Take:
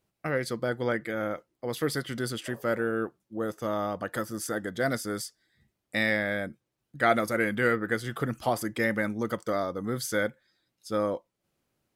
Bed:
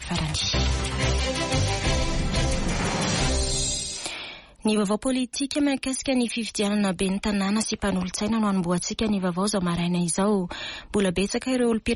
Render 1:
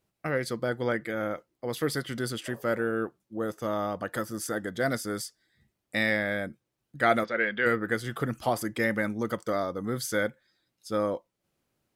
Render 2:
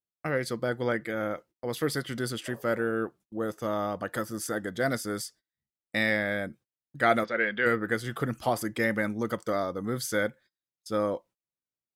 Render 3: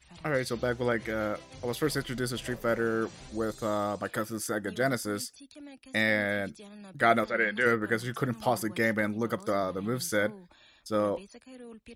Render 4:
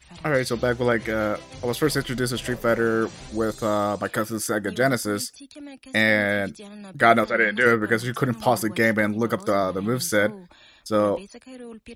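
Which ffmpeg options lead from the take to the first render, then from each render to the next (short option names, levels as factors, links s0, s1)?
-filter_complex "[0:a]asplit=3[s0][s1][s2];[s0]afade=t=out:st=7.23:d=0.02[s3];[s1]highpass=270,equalizer=f=300:t=q:w=4:g=-9,equalizer=f=770:t=q:w=4:g=-4,equalizer=f=1100:t=q:w=4:g=-5,equalizer=f=1700:t=q:w=4:g=4,equalizer=f=3400:t=q:w=4:g=5,lowpass=f=4100:w=0.5412,lowpass=f=4100:w=1.3066,afade=t=in:st=7.23:d=0.02,afade=t=out:st=7.65:d=0.02[s4];[s2]afade=t=in:st=7.65:d=0.02[s5];[s3][s4][s5]amix=inputs=3:normalize=0"
-af "agate=range=0.0501:threshold=0.00251:ratio=16:detection=peak"
-filter_complex "[1:a]volume=0.0596[s0];[0:a][s0]amix=inputs=2:normalize=0"
-af "volume=2.24"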